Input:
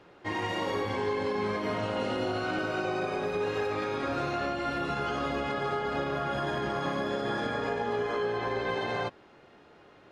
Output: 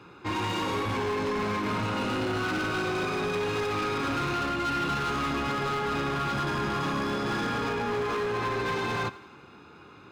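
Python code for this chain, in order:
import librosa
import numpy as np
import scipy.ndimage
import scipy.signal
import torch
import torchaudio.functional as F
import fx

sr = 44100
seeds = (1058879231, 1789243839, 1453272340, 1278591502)

y = scipy.signal.sosfilt(scipy.signal.butter(4, 59.0, 'highpass', fs=sr, output='sos'), x)
y = y + 0.7 * np.pad(y, (int(0.8 * sr / 1000.0), 0))[:len(y)]
y = np.clip(10.0 ** (31.0 / 20.0) * y, -1.0, 1.0) / 10.0 ** (31.0 / 20.0)
y = fx.echo_thinned(y, sr, ms=84, feedback_pct=60, hz=420.0, wet_db=-18)
y = y * 10.0 ** (4.5 / 20.0)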